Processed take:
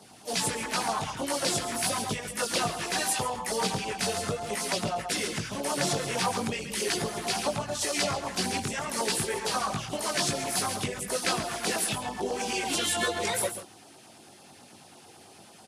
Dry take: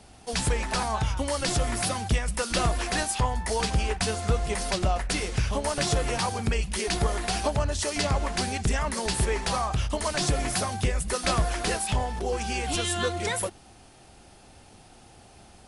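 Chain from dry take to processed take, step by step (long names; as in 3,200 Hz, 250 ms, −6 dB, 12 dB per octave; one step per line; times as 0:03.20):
multi-voice chorus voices 2, 0.41 Hz, delay 20 ms, depth 1.8 ms
on a send: single-tap delay 137 ms −9.5 dB
on the sum: downward compressor 2.5 to 1, threshold −28 dBFS, peak gain reduction 6.5 dB
Bessel high-pass filter 190 Hz, order 4
auto-filter notch saw down 9.1 Hz 360–2,800 Hz
pitch-shifted copies added +4 semitones −11 dB
level +5.5 dB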